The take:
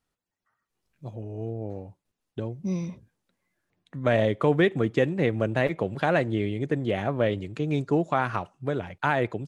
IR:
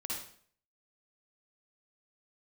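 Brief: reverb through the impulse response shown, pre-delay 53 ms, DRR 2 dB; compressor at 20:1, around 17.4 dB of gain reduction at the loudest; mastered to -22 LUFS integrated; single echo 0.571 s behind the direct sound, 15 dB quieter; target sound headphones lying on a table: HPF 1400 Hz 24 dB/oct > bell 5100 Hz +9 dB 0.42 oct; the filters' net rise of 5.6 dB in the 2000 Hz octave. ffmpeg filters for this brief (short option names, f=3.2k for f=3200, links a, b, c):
-filter_complex "[0:a]equalizer=f=2k:t=o:g=7.5,acompressor=threshold=-32dB:ratio=20,aecho=1:1:571:0.178,asplit=2[a][b];[1:a]atrim=start_sample=2205,adelay=53[c];[b][c]afir=irnorm=-1:irlink=0,volume=-3dB[d];[a][d]amix=inputs=2:normalize=0,highpass=f=1.4k:w=0.5412,highpass=f=1.4k:w=1.3066,equalizer=f=5.1k:t=o:w=0.42:g=9,volume=20.5dB"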